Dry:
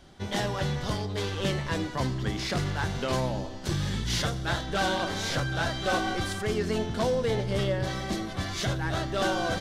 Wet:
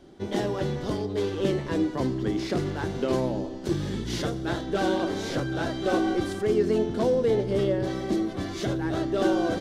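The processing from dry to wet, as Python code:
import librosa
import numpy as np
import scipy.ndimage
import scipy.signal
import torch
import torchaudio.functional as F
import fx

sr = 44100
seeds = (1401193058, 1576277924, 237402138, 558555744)

y = fx.peak_eq(x, sr, hz=340.0, db=15.0, octaves=1.5)
y = y * 10.0 ** (-5.5 / 20.0)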